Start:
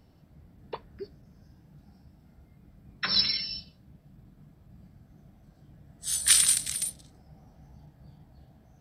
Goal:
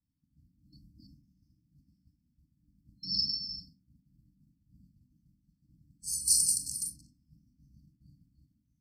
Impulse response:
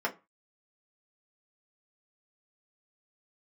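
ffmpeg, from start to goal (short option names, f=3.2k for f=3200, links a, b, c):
-filter_complex "[0:a]agate=range=-33dB:threshold=-46dB:ratio=3:detection=peak,asplit=2[a][b];[1:a]atrim=start_sample=2205,adelay=39[c];[b][c]afir=irnorm=-1:irlink=0,volume=-10.5dB[d];[a][d]amix=inputs=2:normalize=0,afftfilt=real='re*(1-between(b*sr/4096,320,4200))':imag='im*(1-between(b*sr/4096,320,4200))':win_size=4096:overlap=0.75,volume=-4.5dB"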